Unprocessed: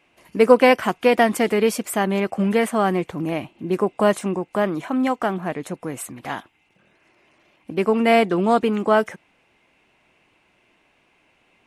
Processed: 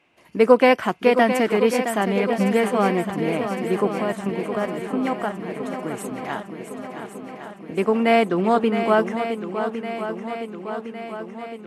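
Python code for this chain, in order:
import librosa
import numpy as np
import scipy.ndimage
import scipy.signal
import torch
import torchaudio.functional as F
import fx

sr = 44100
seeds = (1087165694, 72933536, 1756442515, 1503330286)

y = scipy.signal.sosfilt(scipy.signal.butter(2, 68.0, 'highpass', fs=sr, output='sos'), x)
y = fx.high_shelf(y, sr, hz=7300.0, db=-7.5)
y = fx.level_steps(y, sr, step_db=11, at=(3.87, 5.76))
y = fx.echo_swing(y, sr, ms=1109, ratio=1.5, feedback_pct=59, wet_db=-9.0)
y = y * 10.0 ** (-1.0 / 20.0)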